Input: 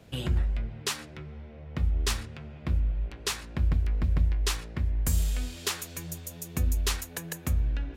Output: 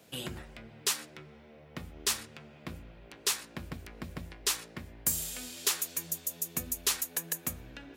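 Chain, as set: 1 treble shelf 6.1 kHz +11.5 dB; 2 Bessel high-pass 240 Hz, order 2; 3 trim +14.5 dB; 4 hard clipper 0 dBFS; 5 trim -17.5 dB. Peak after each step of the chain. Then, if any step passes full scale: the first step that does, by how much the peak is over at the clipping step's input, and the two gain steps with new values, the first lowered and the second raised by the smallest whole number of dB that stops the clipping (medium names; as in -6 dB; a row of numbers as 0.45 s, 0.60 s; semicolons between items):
-9.5 dBFS, -10.0 dBFS, +4.5 dBFS, 0.0 dBFS, -17.5 dBFS; step 3, 4.5 dB; step 3 +9.5 dB, step 5 -12.5 dB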